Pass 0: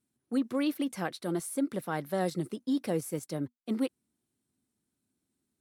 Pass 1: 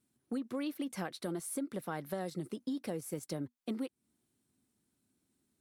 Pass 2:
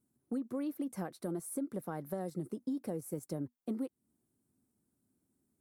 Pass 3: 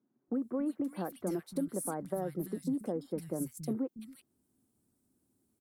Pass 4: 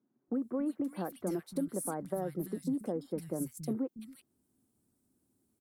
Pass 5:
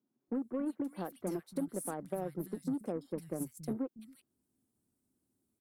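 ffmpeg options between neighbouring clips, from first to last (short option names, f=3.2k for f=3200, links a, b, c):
-af "acompressor=threshold=-38dB:ratio=6,volume=3dB"
-af "equalizer=f=3.2k:t=o:w=2.1:g=-15,volume=1dB"
-filter_complex "[0:a]acrossover=split=160|1900[a][b][c];[a]adelay=280[d];[c]adelay=340[e];[d][b][e]amix=inputs=3:normalize=0,volume=4dB"
-af anull
-af "aeval=exprs='0.0794*(cos(1*acos(clip(val(0)/0.0794,-1,1)))-cos(1*PI/2))+0.00355*(cos(7*acos(clip(val(0)/0.0794,-1,1)))-cos(7*PI/2))':c=same,volume=-2dB"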